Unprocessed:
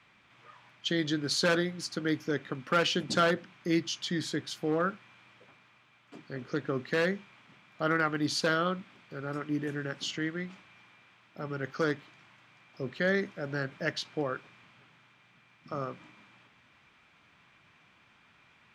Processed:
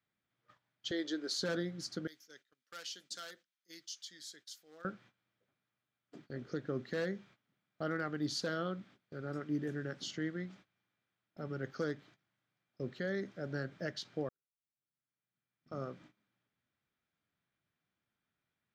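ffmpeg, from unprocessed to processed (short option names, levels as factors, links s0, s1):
-filter_complex "[0:a]asettb=1/sr,asplit=3[s0][s1][s2];[s0]atrim=end=0.914[s3];[s1]atrim=start=0.91:end=1.39,asetpts=PTS-STARTPTS,afade=t=in:d=0.004:c=qsin,afade=t=out:st=0.476:d=0.004:c=qsin,highpass=f=310:w=0.5412,highpass=f=310:w=1.3066[s4];[s2]atrim=start=1.386[s5];[s3][s4]acrossfade=d=0.004:c1=hsin:c2=qsin[s6];[s6][s5]acrossfade=d=0.004:c1=qsin:c2=hsin,asettb=1/sr,asplit=3[s7][s8][s9];[s7]atrim=end=2.074[s10];[s8]atrim=start=2.07:end=4.85,asetpts=PTS-STARTPTS,afade=t=in:d=0.004:c=qsin,afade=t=out:st=2.776:d=0.004:c=qsin,aderivative[s11];[s9]atrim=start=4.846[s12];[s10][s11]acrossfade=d=0.004:c1=hsin:c2=qsin[s13];[s13][s12]acrossfade=d=0.004:c1=qsin:c2=hsin,asplit=2[s14][s15];[s14]atrim=end=14.29,asetpts=PTS-STARTPTS,afade=t=out:st=14.286:d=0.004:c=hsin[s16];[s15]atrim=start=14.29,asetpts=PTS-STARTPTS,afade=t=in:d=1.55:c=qua[s17];[s16][s17]concat=n=2:v=0:a=1,agate=range=0.126:threshold=0.00251:ratio=16:detection=peak,equalizer=f=1000:t=o:w=0.67:g=-9,equalizer=f=2500:t=o:w=0.67:g=-10,equalizer=f=10000:t=o:w=0.67:g=-7,alimiter=limit=0.0708:level=0:latency=1:release=169,volume=0.668"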